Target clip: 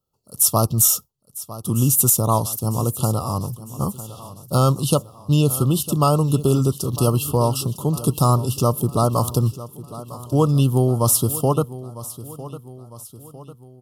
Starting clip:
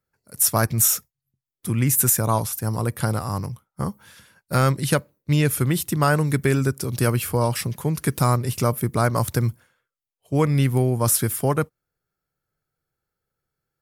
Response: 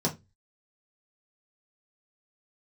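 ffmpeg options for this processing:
-filter_complex "[0:a]asuperstop=centerf=1900:order=20:qfactor=1.4,asplit=2[link_01][link_02];[link_02]aecho=0:1:953|1906|2859|3812:0.158|0.0792|0.0396|0.0198[link_03];[link_01][link_03]amix=inputs=2:normalize=0,volume=2.5dB"

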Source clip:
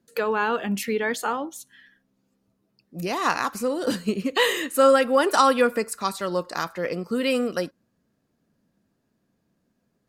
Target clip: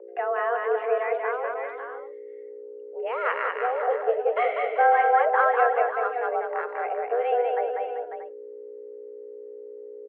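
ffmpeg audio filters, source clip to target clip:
ffmpeg -i in.wav -filter_complex "[0:a]aeval=exprs='val(0)+0.02*(sin(2*PI*60*n/s)+sin(2*PI*2*60*n/s)/2+sin(2*PI*3*60*n/s)/3+sin(2*PI*4*60*n/s)/4+sin(2*PI*5*60*n/s)/5)':channel_layout=same,aemphasis=mode=reproduction:type=riaa,aecho=1:1:195|389|547|633:0.668|0.266|0.335|0.188,highpass=frequency=190:width_type=q:width=0.5412,highpass=frequency=190:width_type=q:width=1.307,lowpass=frequency=2300:width_type=q:width=0.5176,lowpass=frequency=2300:width_type=q:width=0.7071,lowpass=frequency=2300:width_type=q:width=1.932,afreqshift=240,asettb=1/sr,asplit=3[link_01][link_02][link_03];[link_01]atrim=end=1.544[link_04];[link_02]atrim=start=1.54:end=3.82,asetpts=PTS-STARTPTS,afade=type=in:duration=0.004:curve=qsin,afade=type=out:start_time=2.276:duration=0.004:curve=qsin,adynamicequalizer=threshold=0.0158:dfrequency=1900:dqfactor=0.7:tfrequency=1900:tqfactor=0.7:attack=5:release=100:ratio=0.375:range=3.5:mode=boostabove:tftype=highshelf[link_05];[link_03]atrim=start=3.816[link_06];[link_04][link_05]acrossfade=duration=0.004:curve1=hsin:curve2=qsin[link_07];[link_07][link_06]acrossfade=duration=0.004:curve1=qsin:curve2=hsin,volume=-5.5dB" out.wav

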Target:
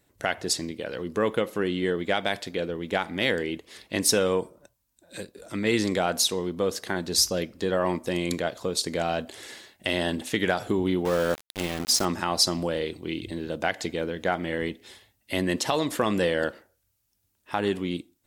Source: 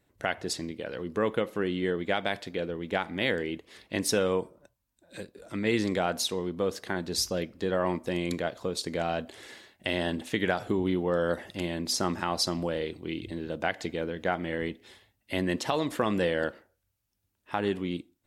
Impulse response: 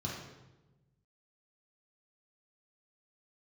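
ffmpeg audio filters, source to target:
-filter_complex "[0:a]bass=frequency=250:gain=-1,treble=frequency=4000:gain=6,acontrast=81,asettb=1/sr,asplit=3[link_01][link_02][link_03];[link_01]atrim=end=11.054[link_04];[link_02]atrim=start=11.05:end=12.05,asetpts=PTS-STARTPTS,afade=type=in:duration=0.004:curve=qsin,afade=type=out:start_time=0.996:duration=0.004:curve=qsin,aeval=exprs='val(0)*gte(abs(val(0)),0.0531)':channel_layout=same[link_05];[link_03]atrim=start=12.046[link_06];[link_04][link_05]acrossfade=duration=0.004:curve1=hsin:curve2=qsin[link_07];[link_07][link_06]acrossfade=duration=0.004:curve1=qsin:curve2=hsin,volume=-4dB"

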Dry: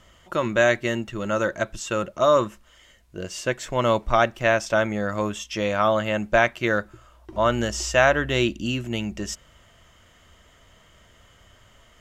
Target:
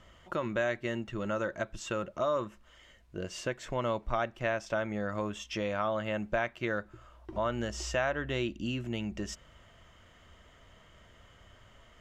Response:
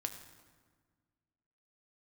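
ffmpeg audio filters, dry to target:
-af "highshelf=frequency=5600:gain=-11,acompressor=threshold=-32dB:ratio=2,volume=-2.5dB"

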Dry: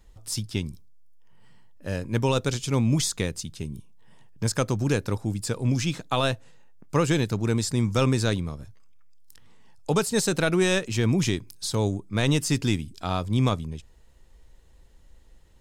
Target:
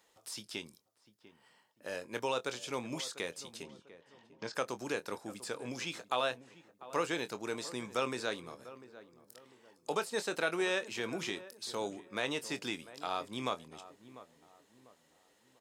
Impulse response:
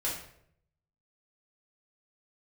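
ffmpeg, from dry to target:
-filter_complex "[0:a]highpass=470,acrossover=split=3700[link_01][link_02];[link_02]acompressor=threshold=-39dB:ratio=4:attack=1:release=60[link_03];[link_01][link_03]amix=inputs=2:normalize=0,asettb=1/sr,asplit=3[link_04][link_05][link_06];[link_04]atrim=end=3.634[link_07];[link_05]atrim=start=3.63:end=4.54,asetpts=PTS-STARTPTS,afade=type=in:duration=0.004:curve=qsin,afade=type=out:start_time=0.906:duration=0.004:curve=qsin,lowpass=frequency=5700:width=0.5412,lowpass=frequency=5700:width=1.3066[link_08];[link_06]atrim=start=4.536[link_09];[link_07][link_08]acrossfade=duration=0.004:curve1=hsin:curve2=qsin[link_10];[link_10][link_09]acrossfade=duration=0.004:curve1=qsin:curve2=hsin,asplit=2[link_11][link_12];[link_12]acompressor=threshold=-43dB:ratio=6,volume=0dB[link_13];[link_11][link_13]amix=inputs=2:normalize=0,asplit=2[link_14][link_15];[link_15]adelay=24,volume=-12dB[link_16];[link_14][link_16]amix=inputs=2:normalize=0,asplit=2[link_17][link_18];[link_18]adelay=696,lowpass=frequency=1200:poles=1,volume=-15dB,asplit=2[link_19][link_20];[link_20]adelay=696,lowpass=frequency=1200:poles=1,volume=0.39,asplit=2[link_21][link_22];[link_22]adelay=696,lowpass=frequency=1200:poles=1,volume=0.39,asplit=2[link_23][link_24];[link_24]adelay=696,lowpass=frequency=1200:poles=1,volume=0.39[link_25];[link_19][link_21][link_23][link_25]amix=inputs=4:normalize=0[link_26];[link_17][link_26]amix=inputs=2:normalize=0,volume=-7.5dB"

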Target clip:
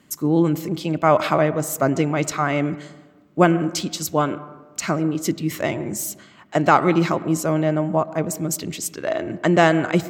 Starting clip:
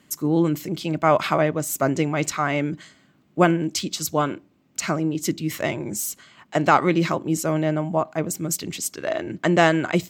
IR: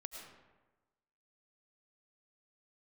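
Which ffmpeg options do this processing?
-filter_complex "[0:a]asplit=2[link_01][link_02];[1:a]atrim=start_sample=2205,lowpass=2000[link_03];[link_02][link_03]afir=irnorm=-1:irlink=0,volume=-5.5dB[link_04];[link_01][link_04]amix=inputs=2:normalize=0"

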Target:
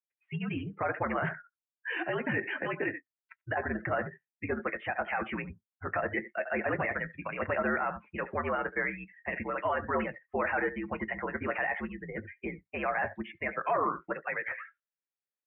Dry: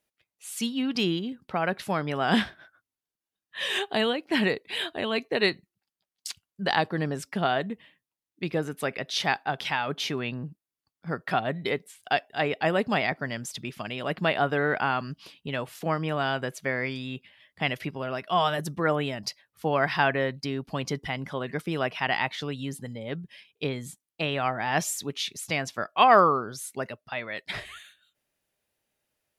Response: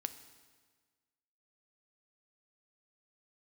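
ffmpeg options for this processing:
-filter_complex "[0:a]asplit=2[link_01][link_02];[link_02]adelay=150,highpass=300,lowpass=3400,asoftclip=type=hard:threshold=-13.5dB,volume=-16dB[link_03];[link_01][link_03]amix=inputs=2:normalize=0,acrossover=split=580|870[link_04][link_05][link_06];[link_06]asoftclip=type=tanh:threshold=-25dB[link_07];[link_04][link_05][link_07]amix=inputs=3:normalize=0,tiltshelf=frequency=1100:gain=-6.5,asplit=2[link_08][link_09];[link_09]acompressor=threshold=-41dB:ratio=5,volume=0dB[link_10];[link_08][link_10]amix=inputs=2:normalize=0,asplit=2[link_11][link_12];[link_12]adelay=17,volume=-8dB[link_13];[link_11][link_13]amix=inputs=2:normalize=0[link_14];[1:a]atrim=start_sample=2205,atrim=end_sample=3528[link_15];[link_14][link_15]afir=irnorm=-1:irlink=0,alimiter=limit=-19dB:level=0:latency=1:release=15,highpass=frequency=160:width_type=q:width=0.5412,highpass=frequency=160:width_type=q:width=1.307,lowpass=frequency=2300:width_type=q:width=0.5176,lowpass=frequency=2300:width_type=q:width=0.7071,lowpass=frequency=2300:width_type=q:width=1.932,afreqshift=-72,bandreject=frequency=50:width_type=h:width=6,bandreject=frequency=100:width_type=h:width=6,bandreject=frequency=150:width_type=h:width=6,bandreject=frequency=200:width_type=h:width=6,bandreject=frequency=250:width_type=h:width=6,atempo=1.9,afftdn=noise_reduction=27:noise_floor=-43"

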